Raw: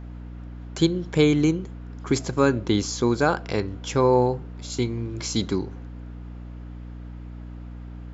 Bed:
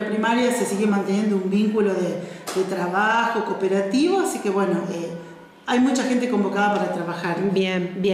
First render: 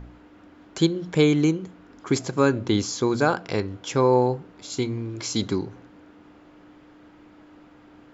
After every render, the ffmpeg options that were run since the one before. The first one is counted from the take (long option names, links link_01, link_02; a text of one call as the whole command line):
ffmpeg -i in.wav -af "bandreject=frequency=60:width_type=h:width=4,bandreject=frequency=120:width_type=h:width=4,bandreject=frequency=180:width_type=h:width=4,bandreject=frequency=240:width_type=h:width=4" out.wav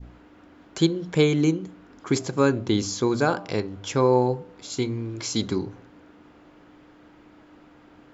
ffmpeg -i in.wav -af "bandreject=frequency=99.22:width_type=h:width=4,bandreject=frequency=198.44:width_type=h:width=4,bandreject=frequency=297.66:width_type=h:width=4,bandreject=frequency=396.88:width_type=h:width=4,bandreject=frequency=496.1:width_type=h:width=4,bandreject=frequency=595.32:width_type=h:width=4,bandreject=frequency=694.54:width_type=h:width=4,bandreject=frequency=793.76:width_type=h:width=4,bandreject=frequency=892.98:width_type=h:width=4,bandreject=frequency=992.2:width_type=h:width=4,bandreject=frequency=1091.42:width_type=h:width=4,bandreject=frequency=1190.64:width_type=h:width=4,bandreject=frequency=1289.86:width_type=h:width=4,adynamicequalizer=threshold=0.0141:dfrequency=1400:dqfactor=0.74:tfrequency=1400:tqfactor=0.74:attack=5:release=100:ratio=0.375:range=2:mode=cutabove:tftype=bell" out.wav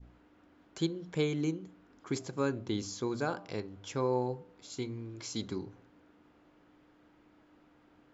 ffmpeg -i in.wav -af "volume=-11.5dB" out.wav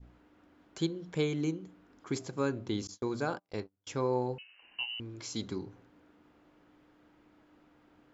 ffmpeg -i in.wav -filter_complex "[0:a]asettb=1/sr,asplit=3[link_01][link_02][link_03];[link_01]atrim=end=2.874[link_04];[link_02]atrim=start=2.87:end=3.87,asetpts=PTS-STARTPTS,afade=type=in:duration=0.004:curve=qsin,afade=type=out:start_time=0.996:duration=0.004:curve=qsin,agate=range=-34dB:threshold=-42dB:ratio=16:release=100:detection=peak[link_05];[link_03]atrim=start=3.866[link_06];[link_04][link_05]acrossfade=duration=0.004:curve1=hsin:curve2=qsin[link_07];[link_07][link_06]acrossfade=duration=0.004:curve1=qsin:curve2=hsin,asettb=1/sr,asplit=3[link_08][link_09][link_10];[link_08]atrim=end=4.384[link_11];[link_09]atrim=start=4.38:end=5,asetpts=PTS-STARTPTS,afade=type=in:duration=0.004:curve=qsin,afade=type=out:start_time=0.616:duration=0.004:curve=qsin,lowpass=frequency=2600:width_type=q:width=0.5098,lowpass=frequency=2600:width_type=q:width=0.6013,lowpass=frequency=2600:width_type=q:width=0.9,lowpass=frequency=2600:width_type=q:width=2.563,afreqshift=-3100[link_12];[link_10]atrim=start=4.996[link_13];[link_11][link_12]acrossfade=duration=0.004:curve1=hsin:curve2=qsin[link_14];[link_14][link_13]acrossfade=duration=0.004:curve1=qsin:curve2=hsin" out.wav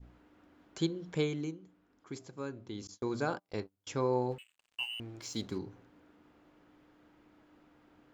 ffmpeg -i in.wav -filter_complex "[0:a]asplit=3[link_01][link_02][link_03];[link_01]afade=type=out:start_time=4.3:duration=0.02[link_04];[link_02]aeval=exprs='sgn(val(0))*max(abs(val(0))-0.00178,0)':channel_layout=same,afade=type=in:start_time=4.3:duration=0.02,afade=type=out:start_time=5.57:duration=0.02[link_05];[link_03]afade=type=in:start_time=5.57:duration=0.02[link_06];[link_04][link_05][link_06]amix=inputs=3:normalize=0,asplit=3[link_07][link_08][link_09];[link_07]atrim=end=1.56,asetpts=PTS-STARTPTS,afade=type=out:start_time=1.16:duration=0.4:silence=0.354813[link_10];[link_08]atrim=start=1.56:end=2.74,asetpts=PTS-STARTPTS,volume=-9dB[link_11];[link_09]atrim=start=2.74,asetpts=PTS-STARTPTS,afade=type=in:duration=0.4:silence=0.354813[link_12];[link_10][link_11][link_12]concat=n=3:v=0:a=1" out.wav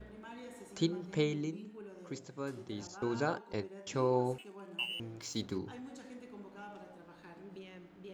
ffmpeg -i in.wav -i bed.wav -filter_complex "[1:a]volume=-29.5dB[link_01];[0:a][link_01]amix=inputs=2:normalize=0" out.wav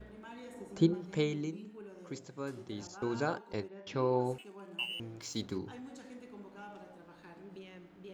ffmpeg -i in.wav -filter_complex "[0:a]asettb=1/sr,asplit=3[link_01][link_02][link_03];[link_01]atrim=end=0.544[link_04];[link_02]atrim=start=0.54:end=0.94,asetpts=PTS-STARTPTS,afade=type=in:duration=0.004:curve=qsin,afade=type=out:start_time=0.396:duration=0.004:curve=qsin,tiltshelf=frequency=1300:gain=6[link_05];[link_03]atrim=start=0.936[link_06];[link_04][link_05]acrossfade=duration=0.004:curve1=hsin:curve2=qsin[link_07];[link_07][link_06]acrossfade=duration=0.004:curve1=qsin:curve2=hsin,asettb=1/sr,asplit=3[link_08][link_09][link_10];[link_08]atrim=end=3.684[link_11];[link_09]atrim=start=3.68:end=4.21,asetpts=PTS-STARTPTS,afade=type=in:duration=0.004:curve=qsin,afade=type=out:start_time=0.526:duration=0.004:curve=qsin,lowpass=frequency=4800:width=0.5412,lowpass=frequency=4800:width=1.3066[link_12];[link_10]atrim=start=4.206[link_13];[link_11][link_12]acrossfade=duration=0.004:curve1=hsin:curve2=qsin[link_14];[link_14][link_13]acrossfade=duration=0.004:curve1=qsin:curve2=hsin" out.wav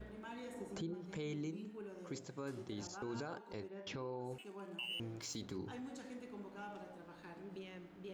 ffmpeg -i in.wav -af "acompressor=threshold=-38dB:ratio=2.5,alimiter=level_in=10.5dB:limit=-24dB:level=0:latency=1:release=22,volume=-10.5dB" out.wav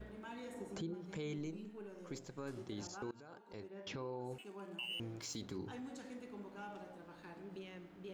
ffmpeg -i in.wav -filter_complex "[0:a]asettb=1/sr,asplit=3[link_01][link_02][link_03];[link_01]atrim=end=1.384[link_04];[link_02]atrim=start=1.38:end=2.56,asetpts=PTS-STARTPTS,afade=type=in:duration=0.004:curve=qsin,afade=type=out:start_time=1.176:duration=0.004:curve=qsin,aeval=exprs='if(lt(val(0),0),0.708*val(0),val(0))':channel_layout=same[link_05];[link_03]atrim=start=2.556[link_06];[link_04][link_05]acrossfade=duration=0.004:curve1=hsin:curve2=qsin[link_07];[link_07][link_06]acrossfade=duration=0.004:curve1=qsin:curve2=hsin,asplit=2[link_08][link_09];[link_08]atrim=end=3.11,asetpts=PTS-STARTPTS,afade=type=out:start_time=3.106:duration=0.004:curve=hsin:silence=0.0794328[link_10];[link_09]atrim=start=3.11,asetpts=PTS-STARTPTS,afade=type=in:duration=0.75:silence=0.0794328[link_11];[link_10][link_11]concat=n=2:v=0:a=1" out.wav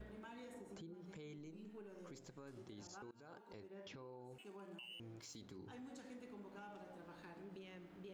ffmpeg -i in.wav -af "alimiter=level_in=18dB:limit=-24dB:level=0:latency=1:release=266,volume=-18dB,acompressor=threshold=-53dB:ratio=2" out.wav